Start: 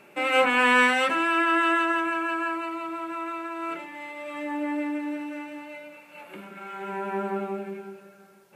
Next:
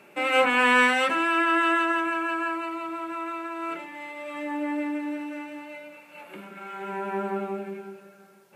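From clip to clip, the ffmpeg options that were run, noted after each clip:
-af "highpass=98"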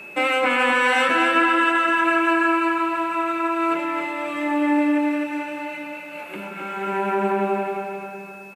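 -filter_complex "[0:a]aeval=exprs='val(0)+0.00562*sin(2*PI*2600*n/s)':c=same,alimiter=limit=0.1:level=0:latency=1:release=98,asplit=2[s0][s1];[s1]adelay=259,lowpass=f=4500:p=1,volume=0.631,asplit=2[s2][s3];[s3]adelay=259,lowpass=f=4500:p=1,volume=0.48,asplit=2[s4][s5];[s5]adelay=259,lowpass=f=4500:p=1,volume=0.48,asplit=2[s6][s7];[s7]adelay=259,lowpass=f=4500:p=1,volume=0.48,asplit=2[s8][s9];[s9]adelay=259,lowpass=f=4500:p=1,volume=0.48,asplit=2[s10][s11];[s11]adelay=259,lowpass=f=4500:p=1,volume=0.48[s12];[s0][s2][s4][s6][s8][s10][s12]amix=inputs=7:normalize=0,volume=2.37"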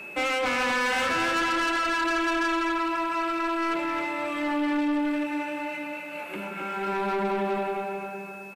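-af "asoftclip=type=tanh:threshold=0.0841,volume=0.891"

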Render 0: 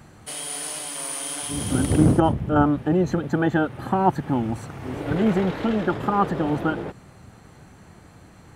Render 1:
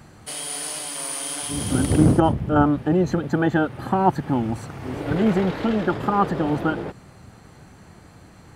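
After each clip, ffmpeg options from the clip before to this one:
-af "equalizer=f=4700:t=o:w=0.27:g=3.5,volume=1.12"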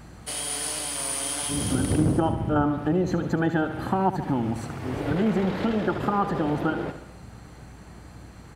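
-af "aecho=1:1:73|146|219|292|365|438:0.251|0.141|0.0788|0.0441|0.0247|0.0138,aeval=exprs='val(0)+0.00398*(sin(2*PI*60*n/s)+sin(2*PI*2*60*n/s)/2+sin(2*PI*3*60*n/s)/3+sin(2*PI*4*60*n/s)/4+sin(2*PI*5*60*n/s)/5)':c=same,acompressor=threshold=0.0708:ratio=2"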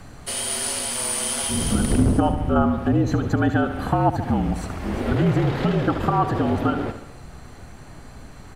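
-af "afreqshift=-51,volume=1.58"

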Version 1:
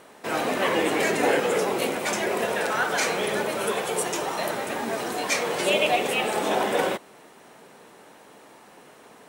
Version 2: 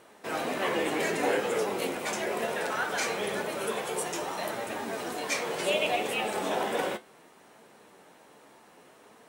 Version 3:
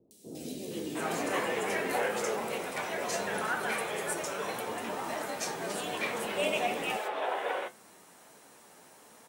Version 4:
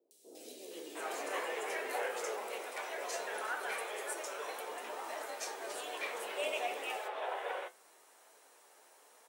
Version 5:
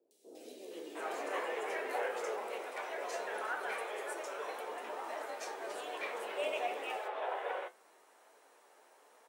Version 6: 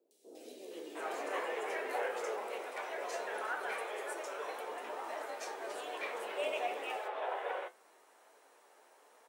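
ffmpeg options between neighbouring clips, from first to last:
-af "flanger=delay=8.5:depth=5.8:regen=61:speed=0.65:shape=triangular,volume=0.841"
-filter_complex "[0:a]acrossover=split=130|4100[s0][s1][s2];[s2]acompressor=mode=upward:threshold=0.00355:ratio=2.5[s3];[s0][s1][s3]amix=inputs=3:normalize=0,acrossover=split=400|3600[s4][s5][s6];[s6]adelay=110[s7];[s5]adelay=710[s8];[s4][s8][s7]amix=inputs=3:normalize=0,volume=0.891"
-af "highpass=f=380:w=0.5412,highpass=f=380:w=1.3066,volume=0.501"
-af "highshelf=f=3400:g=-10,volume=1.19"
-af "highpass=140"

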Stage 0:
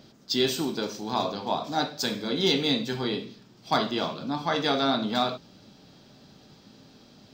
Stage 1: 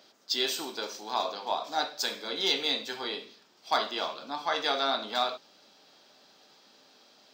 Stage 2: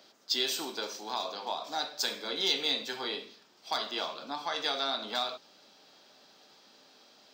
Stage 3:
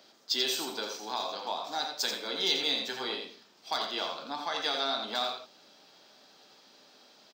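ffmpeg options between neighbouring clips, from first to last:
-af "highpass=570,volume=0.891"
-filter_complex "[0:a]acrossover=split=160|3000[s0][s1][s2];[s1]acompressor=threshold=0.0224:ratio=3[s3];[s0][s3][s2]amix=inputs=3:normalize=0"
-af "aecho=1:1:85:0.473"

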